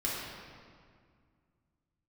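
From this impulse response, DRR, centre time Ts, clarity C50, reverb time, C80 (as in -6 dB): -7.0 dB, 0.116 s, -1.5 dB, 2.0 s, 0.5 dB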